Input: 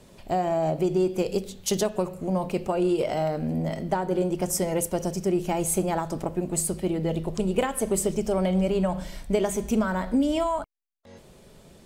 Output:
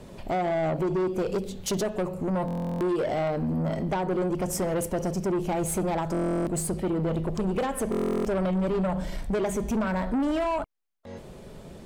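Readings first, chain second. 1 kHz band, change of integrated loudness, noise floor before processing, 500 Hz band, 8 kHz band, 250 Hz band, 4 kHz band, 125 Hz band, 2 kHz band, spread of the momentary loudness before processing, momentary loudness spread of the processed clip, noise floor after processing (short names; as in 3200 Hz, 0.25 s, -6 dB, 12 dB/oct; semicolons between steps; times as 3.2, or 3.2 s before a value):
-1.0 dB, -1.5 dB, -52 dBFS, -1.5 dB, -5.5 dB, -1.0 dB, -4.0 dB, 0.0 dB, 0.0 dB, 5 LU, 5 LU, -45 dBFS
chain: high shelf 2400 Hz -8.5 dB; in parallel at +0.5 dB: compressor, threshold -34 dBFS, peak gain reduction 14.5 dB; on the sum: soft clip -24 dBFS, distortion -10 dB; stuck buffer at 2.46/6.12/7.9, samples 1024, times 14; gain +1.5 dB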